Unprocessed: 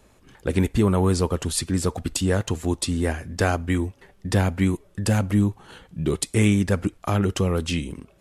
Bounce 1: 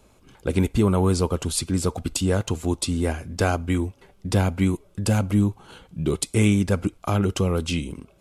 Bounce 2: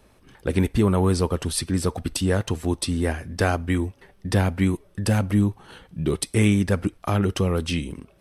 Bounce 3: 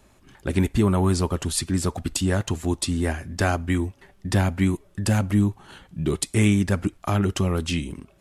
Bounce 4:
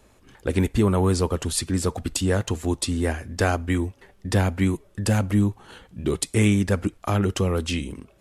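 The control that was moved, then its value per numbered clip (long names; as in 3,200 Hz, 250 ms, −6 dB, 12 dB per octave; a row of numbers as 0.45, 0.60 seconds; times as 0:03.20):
notch filter, centre frequency: 1,800, 7,000, 480, 160 Hertz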